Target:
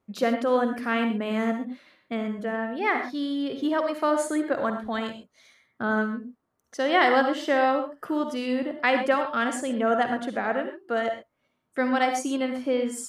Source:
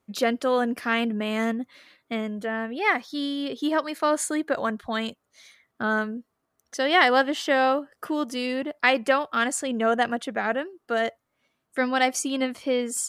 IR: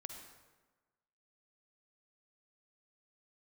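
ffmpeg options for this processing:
-filter_complex "[0:a]highshelf=f=2.3k:g=-8.5[a];[1:a]atrim=start_sample=2205,atrim=end_sample=6174[b];[a][b]afir=irnorm=-1:irlink=0,volume=5dB"

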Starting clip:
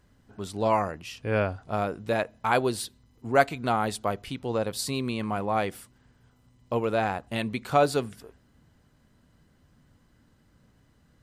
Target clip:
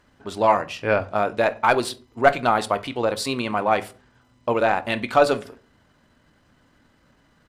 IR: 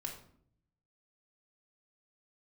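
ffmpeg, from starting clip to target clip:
-filter_complex "[0:a]asplit=2[a][b];[b]highpass=f=720:p=1,volume=12dB,asoftclip=type=tanh:threshold=-4.5dB[c];[a][c]amix=inputs=2:normalize=0,lowpass=f=3.2k:p=1,volume=-6dB,asplit=2[d][e];[1:a]atrim=start_sample=2205,afade=t=out:st=0.45:d=0.01,atrim=end_sample=20286[f];[e][f]afir=irnorm=-1:irlink=0,volume=-4dB[g];[d][g]amix=inputs=2:normalize=0,atempo=1.5"

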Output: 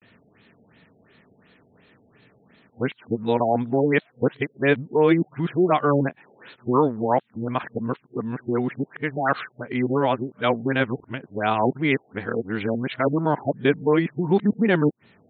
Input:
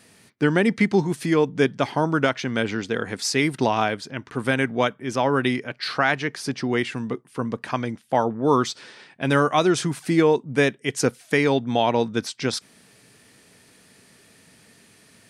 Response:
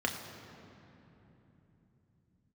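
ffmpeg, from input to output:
-af "areverse,afftfilt=real='re*lt(b*sr/1024,810*pow(4400/810,0.5+0.5*sin(2*PI*2.8*pts/sr)))':imag='im*lt(b*sr/1024,810*pow(4400/810,0.5+0.5*sin(2*PI*2.8*pts/sr)))':win_size=1024:overlap=0.75"

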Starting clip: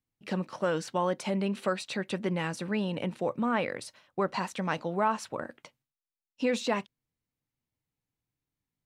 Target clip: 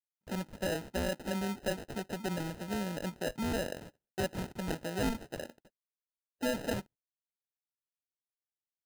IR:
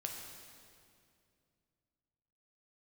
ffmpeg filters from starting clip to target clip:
-af "agate=range=-28dB:threshold=-49dB:ratio=16:detection=peak,acrusher=samples=39:mix=1:aa=0.000001,volume=-5dB"

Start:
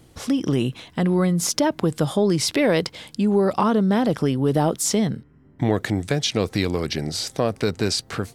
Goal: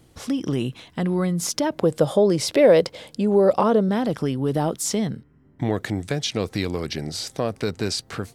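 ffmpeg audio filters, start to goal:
-filter_complex "[0:a]asettb=1/sr,asplit=3[a][b][c];[a]atrim=end=1.724[d];[b]atrim=start=1.72:end=3.89,asetpts=PTS-STARTPTS,afade=t=in:d=0.004:c=qsin,afade=t=out:st=2.166:d=0.004:c=qsin,equalizer=f=540:w=1.8:g=11.5[e];[c]atrim=start=3.886[f];[d][e]acrossfade=d=0.004:c1=hsin:c2=qsin[g];[g][f]acrossfade=d=0.004:c1=qsin:c2=hsin,volume=-3dB"

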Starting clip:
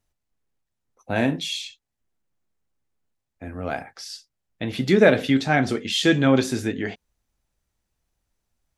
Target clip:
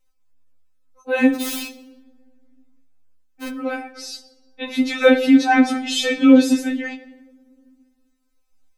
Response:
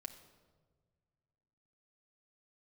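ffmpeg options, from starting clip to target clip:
-filter_complex "[0:a]asplit=3[a][b][c];[a]afade=t=out:st=1.34:d=0.02[d];[b]aeval=exprs='(mod(22.4*val(0)+1,2)-1)/22.4':c=same,afade=t=in:st=1.34:d=0.02,afade=t=out:st=3.48:d=0.02[e];[c]afade=t=in:st=3.48:d=0.02[f];[d][e][f]amix=inputs=3:normalize=0,asplit=2[g][h];[1:a]atrim=start_sample=2205,asetrate=48510,aresample=44100[i];[h][i]afir=irnorm=-1:irlink=0,volume=7.5dB[j];[g][j]amix=inputs=2:normalize=0,afftfilt=real='re*3.46*eq(mod(b,12),0)':imag='im*3.46*eq(mod(b,12),0)':win_size=2048:overlap=0.75,volume=-1dB"

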